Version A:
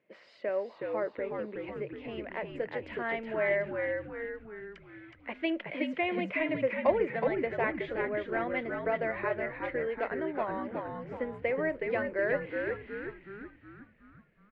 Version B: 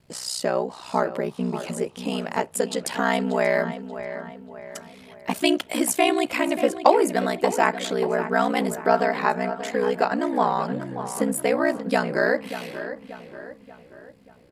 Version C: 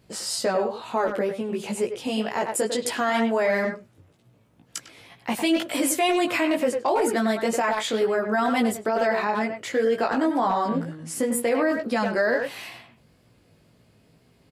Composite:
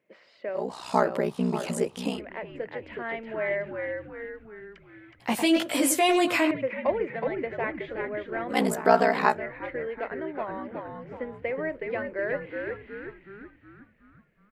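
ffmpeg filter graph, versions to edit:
-filter_complex "[1:a]asplit=2[a][b];[0:a]asplit=4[c][d][e][f];[c]atrim=end=0.69[g];[a]atrim=start=0.53:end=2.22[h];[d]atrim=start=2.06:end=5.202[i];[2:a]atrim=start=5.198:end=6.512[j];[e]atrim=start=6.508:end=8.58[k];[b]atrim=start=8.48:end=9.39[l];[f]atrim=start=9.29[m];[g][h]acrossfade=d=0.16:c1=tri:c2=tri[n];[n][i]acrossfade=d=0.16:c1=tri:c2=tri[o];[o][j]acrossfade=d=0.004:c1=hsin:c2=hsin[p];[p][k]acrossfade=d=0.004:c1=hsin:c2=hsin[q];[q][l]acrossfade=d=0.1:c1=tri:c2=tri[r];[r][m]acrossfade=d=0.1:c1=tri:c2=tri"

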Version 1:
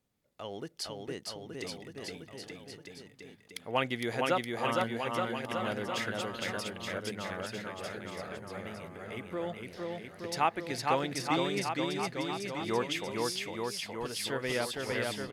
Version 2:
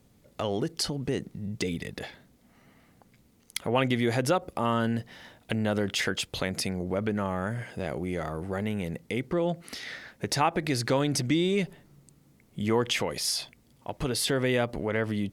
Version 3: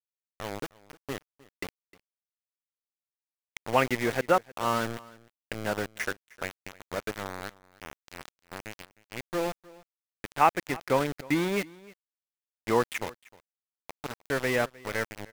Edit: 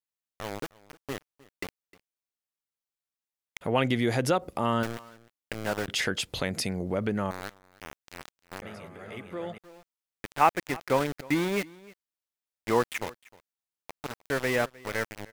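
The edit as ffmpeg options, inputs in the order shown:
-filter_complex "[1:a]asplit=2[a][b];[2:a]asplit=4[c][d][e][f];[c]atrim=end=3.612[g];[a]atrim=start=3.608:end=4.832[h];[d]atrim=start=4.828:end=5.882[i];[b]atrim=start=5.878:end=7.312[j];[e]atrim=start=7.308:end=8.622[k];[0:a]atrim=start=8.618:end=9.582[l];[f]atrim=start=9.578[m];[g][h]acrossfade=d=0.004:c1=hsin:c2=hsin[n];[n][i]acrossfade=d=0.004:c1=hsin:c2=hsin[o];[o][j]acrossfade=d=0.004:c1=hsin:c2=hsin[p];[p][k]acrossfade=d=0.004:c1=hsin:c2=hsin[q];[q][l]acrossfade=d=0.004:c1=hsin:c2=hsin[r];[r][m]acrossfade=d=0.004:c1=hsin:c2=hsin"

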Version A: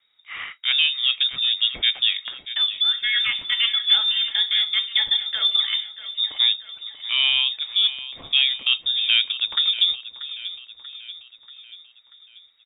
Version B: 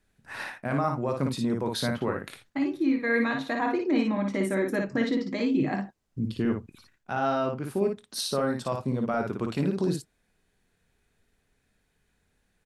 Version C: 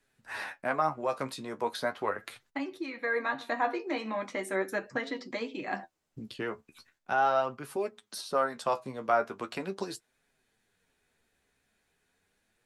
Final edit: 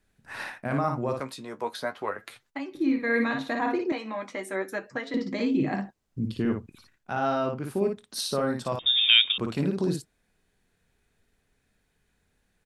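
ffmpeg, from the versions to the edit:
-filter_complex "[2:a]asplit=2[a][b];[1:a]asplit=4[c][d][e][f];[c]atrim=end=1.202[g];[a]atrim=start=1.198:end=2.752[h];[d]atrim=start=2.748:end=3.922[i];[b]atrim=start=3.918:end=5.142[j];[e]atrim=start=5.138:end=8.792[k];[0:a]atrim=start=8.788:end=9.382[l];[f]atrim=start=9.378[m];[g][h]acrossfade=d=0.004:c1=hsin:c2=hsin[n];[n][i]acrossfade=d=0.004:c1=hsin:c2=hsin[o];[o][j]acrossfade=d=0.004:c1=hsin:c2=hsin[p];[p][k]acrossfade=d=0.004:c1=hsin:c2=hsin[q];[q][l]acrossfade=d=0.004:c1=hsin:c2=hsin[r];[r][m]acrossfade=d=0.004:c1=hsin:c2=hsin"

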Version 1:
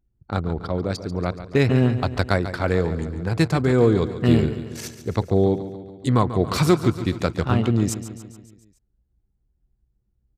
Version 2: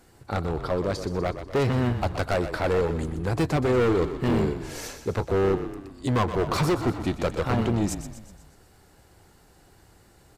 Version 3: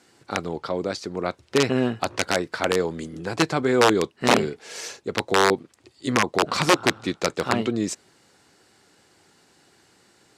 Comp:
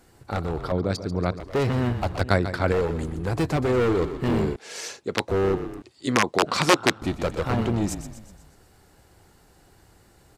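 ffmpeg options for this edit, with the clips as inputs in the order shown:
-filter_complex "[0:a]asplit=2[a][b];[2:a]asplit=2[c][d];[1:a]asplit=5[e][f][g][h][i];[e]atrim=end=0.722[j];[a]atrim=start=0.718:end=1.402[k];[f]atrim=start=1.398:end=2.212[l];[b]atrim=start=2.208:end=2.722[m];[g]atrim=start=2.718:end=4.562[n];[c]atrim=start=4.558:end=5.282[o];[h]atrim=start=5.278:end=5.822[p];[d]atrim=start=5.818:end=7.022[q];[i]atrim=start=7.018[r];[j][k]acrossfade=d=0.004:c1=hsin:c2=hsin[s];[s][l]acrossfade=d=0.004:c1=hsin:c2=hsin[t];[t][m]acrossfade=d=0.004:c1=hsin:c2=hsin[u];[u][n]acrossfade=d=0.004:c1=hsin:c2=hsin[v];[v][o]acrossfade=d=0.004:c1=hsin:c2=hsin[w];[w][p]acrossfade=d=0.004:c1=hsin:c2=hsin[x];[x][q]acrossfade=d=0.004:c1=hsin:c2=hsin[y];[y][r]acrossfade=d=0.004:c1=hsin:c2=hsin"

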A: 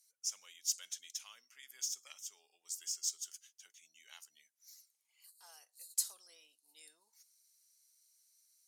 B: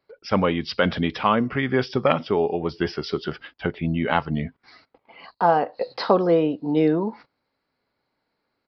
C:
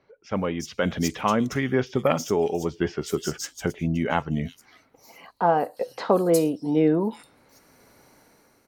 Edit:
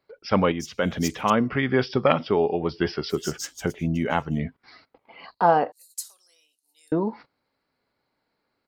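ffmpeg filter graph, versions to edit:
-filter_complex "[2:a]asplit=2[a][b];[1:a]asplit=4[c][d][e][f];[c]atrim=end=0.522[g];[a]atrim=start=0.518:end=1.302[h];[d]atrim=start=1.298:end=3.15[i];[b]atrim=start=3.09:end=4.42[j];[e]atrim=start=4.36:end=5.722[k];[0:a]atrim=start=5.718:end=6.922[l];[f]atrim=start=6.918[m];[g][h]acrossfade=d=0.004:c1=hsin:c2=hsin[n];[n][i]acrossfade=d=0.004:c1=hsin:c2=hsin[o];[o][j]acrossfade=d=0.06:c1=tri:c2=tri[p];[p][k]acrossfade=d=0.06:c1=tri:c2=tri[q];[q][l]acrossfade=d=0.004:c1=hsin:c2=hsin[r];[r][m]acrossfade=d=0.004:c1=hsin:c2=hsin"

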